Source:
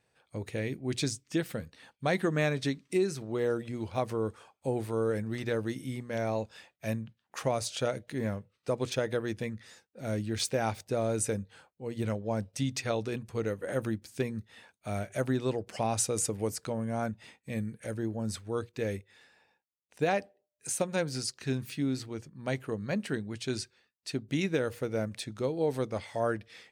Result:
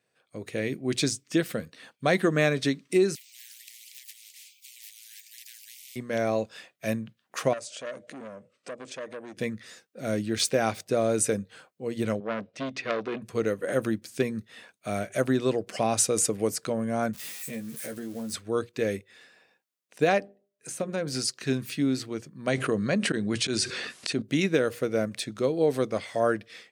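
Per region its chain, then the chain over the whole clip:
0:03.15–0:05.96: Butterworth high-pass 2,300 Hz 96 dB per octave + parametric band 10,000 Hz −11 dB 0.38 octaves + every bin compressed towards the loudest bin 10 to 1
0:07.53–0:09.37: downward compressor 3 to 1, threshold −46 dBFS + loudspeaker in its box 140–9,700 Hz, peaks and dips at 260 Hz +5 dB, 580 Hz +10 dB, 3,900 Hz −4 dB, 7,700 Hz +5 dB + saturating transformer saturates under 1,500 Hz
0:12.20–0:13.22: band-pass filter 180–2,900 Hz + saturating transformer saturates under 1,700 Hz
0:17.13–0:18.33: spike at every zero crossing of −35.5 dBFS + downward compressor 3 to 1, threshold −40 dBFS + double-tracking delay 13 ms −4.5 dB
0:20.18–0:21.07: mains-hum notches 50/100/150/200/250/300/350/400 Hz + downward compressor 2.5 to 1, threshold −31 dBFS + high-shelf EQ 2,300 Hz −9 dB
0:22.47–0:24.22: Butterworth low-pass 11,000 Hz 72 dB per octave + volume swells 161 ms + envelope flattener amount 70%
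whole clip: high-pass filter 160 Hz 12 dB per octave; automatic gain control gain up to 7.5 dB; notch filter 870 Hz, Q 5.7; level −1.5 dB

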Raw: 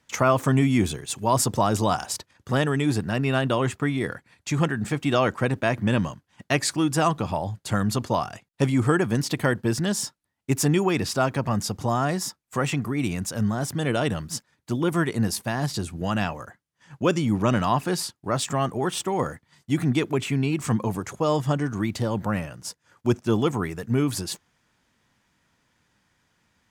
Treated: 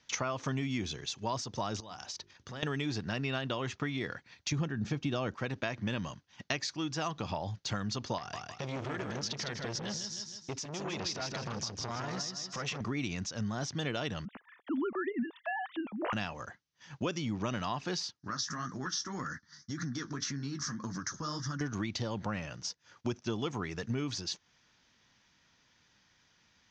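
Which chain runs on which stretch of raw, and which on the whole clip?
0:01.80–0:02.63: mains-hum notches 50/100/150/200/250/300/350/400 Hz + downward compressor 3 to 1, threshold −43 dBFS
0:04.52–0:05.35: Chebyshev low-pass filter 7,200 Hz, order 3 + low-shelf EQ 480 Hz +9.5 dB + notch filter 2,000 Hz, Q 14
0:08.18–0:12.81: downward compressor 3 to 1, threshold −27 dBFS + repeating echo 157 ms, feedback 34%, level −6 dB + saturating transformer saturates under 1,100 Hz
0:14.25–0:16.13: three sine waves on the formant tracks + low-pass filter 1,600 Hz + upward compression, threshold −41 dBFS
0:18.19–0:21.61: drawn EQ curve 110 Hz 0 dB, 170 Hz +4 dB, 290 Hz +4 dB, 420 Hz −8 dB, 790 Hz −9 dB, 1,200 Hz +7 dB, 1,700 Hz +11 dB, 2,500 Hz −15 dB, 5,600 Hz +13 dB, 10,000 Hz −10 dB + downward compressor 5 to 1, threshold −27 dBFS + flanger 1.8 Hz, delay 5.3 ms, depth 9.4 ms, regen −41%
whole clip: high-shelf EQ 2,100 Hz +11.5 dB; downward compressor 6 to 1, threshold −27 dBFS; Chebyshev low-pass filter 6,200 Hz, order 5; level −4 dB

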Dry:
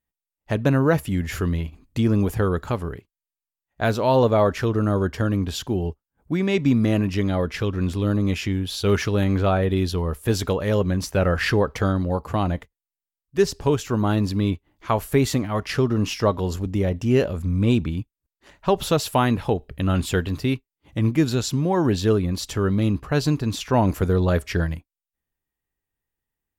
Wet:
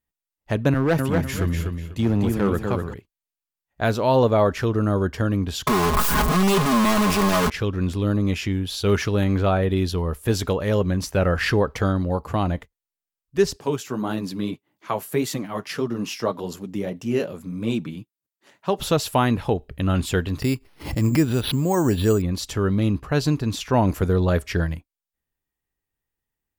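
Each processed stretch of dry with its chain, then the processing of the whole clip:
0:00.74–0:02.94: repeating echo 247 ms, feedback 34%, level −4 dB + gain into a clipping stage and back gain 15 dB + multiband upward and downward expander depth 70%
0:05.67–0:07.50: sign of each sample alone + parametric band 1,100 Hz +13 dB 0.24 octaves + comb filter 4.8 ms, depth 85%
0:13.56–0:18.79: high-pass filter 140 Hz 24 dB per octave + high-shelf EQ 8,100 Hz +6.5 dB + flanger 1.7 Hz, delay 0.3 ms, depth 9.5 ms, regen −37%
0:20.42–0:22.22: bad sample-rate conversion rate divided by 6×, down filtered, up hold + background raised ahead of every attack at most 87 dB per second
whole clip: no processing

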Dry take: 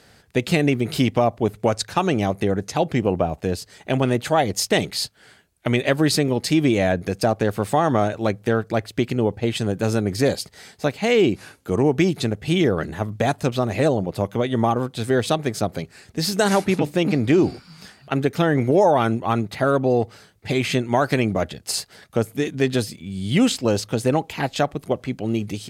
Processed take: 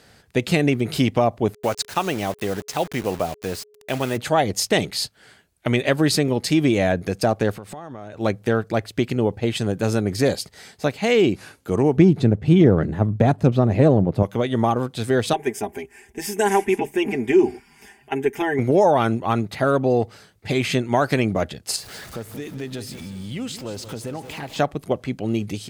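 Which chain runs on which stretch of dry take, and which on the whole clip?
0:01.53–0:04.16: low-shelf EQ 440 Hz −7.5 dB + bit-depth reduction 6 bits, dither none + steady tone 420 Hz −52 dBFS
0:07.52–0:08.20: high-shelf EQ 6,400 Hz −4.5 dB + downward compressor 10 to 1, threshold −32 dBFS
0:11.97–0:14.23: gain on one half-wave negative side −3 dB + high-pass filter 100 Hz + spectral tilt −3.5 dB per octave
0:15.33–0:18.59: phaser with its sweep stopped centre 850 Hz, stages 8 + comb filter 5 ms, depth 73%
0:21.76–0:24.59: converter with a step at zero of −35.5 dBFS + downward compressor 2.5 to 1, threshold −33 dBFS + repeating echo 181 ms, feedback 43%, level −12 dB
whole clip: no processing

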